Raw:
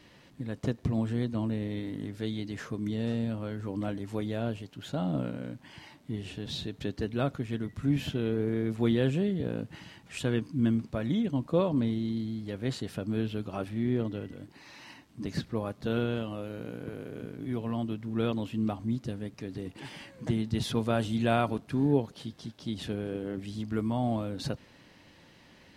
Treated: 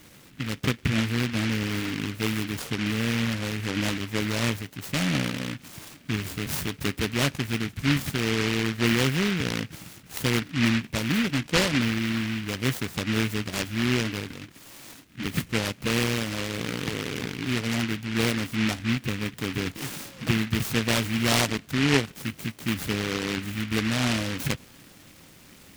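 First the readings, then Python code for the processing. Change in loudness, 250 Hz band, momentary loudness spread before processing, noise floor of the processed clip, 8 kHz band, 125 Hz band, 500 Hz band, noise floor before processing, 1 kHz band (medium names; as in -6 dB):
+5.5 dB, +3.5 dB, 13 LU, -52 dBFS, +18.0 dB, +4.5 dB, +1.0 dB, -57 dBFS, +4.5 dB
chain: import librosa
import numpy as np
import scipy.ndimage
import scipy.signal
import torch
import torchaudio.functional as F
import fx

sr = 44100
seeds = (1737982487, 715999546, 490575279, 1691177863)

p1 = fx.rider(x, sr, range_db=10, speed_s=0.5)
p2 = x + (p1 * 10.0 ** (-3.0 / 20.0))
y = fx.noise_mod_delay(p2, sr, seeds[0], noise_hz=2100.0, depth_ms=0.31)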